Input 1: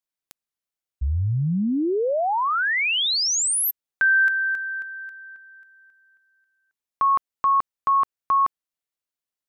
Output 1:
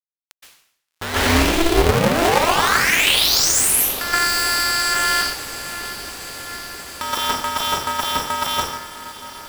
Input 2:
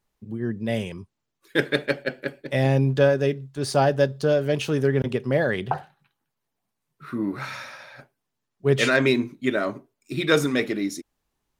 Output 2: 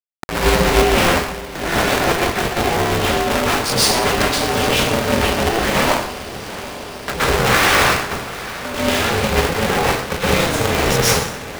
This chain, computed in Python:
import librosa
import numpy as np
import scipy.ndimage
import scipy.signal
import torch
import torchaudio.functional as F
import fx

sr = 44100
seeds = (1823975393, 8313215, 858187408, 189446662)

y = fx.delta_hold(x, sr, step_db=-31.5)
y = scipy.signal.sosfilt(scipy.signal.butter(2, 310.0, 'highpass', fs=sr, output='sos'), y)
y = fx.high_shelf(y, sr, hz=8400.0, db=-6.5)
y = fx.leveller(y, sr, passes=3)
y = fx.level_steps(y, sr, step_db=21)
y = fx.leveller(y, sr, passes=5)
y = fx.over_compress(y, sr, threshold_db=-21.0, ratio=-1.0)
y = fx.echo_diffused(y, sr, ms=778, feedback_pct=76, wet_db=-15.5)
y = fx.rev_plate(y, sr, seeds[0], rt60_s=0.67, hf_ratio=1.0, predelay_ms=110, drr_db=-9.5)
y = y * np.sign(np.sin(2.0 * np.pi * 170.0 * np.arange(len(y)) / sr))
y = F.gain(torch.from_numpy(y), -5.0).numpy()